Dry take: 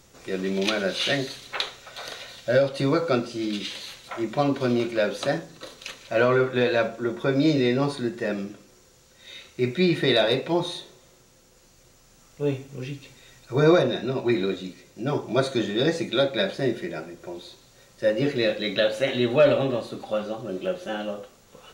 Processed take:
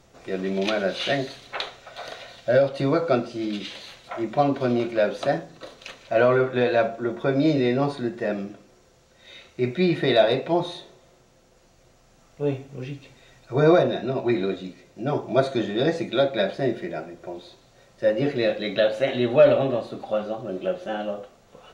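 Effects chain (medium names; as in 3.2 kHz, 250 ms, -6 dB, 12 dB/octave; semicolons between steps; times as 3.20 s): low-pass 3.2 kHz 6 dB/octave; peaking EQ 680 Hz +7 dB 0.35 oct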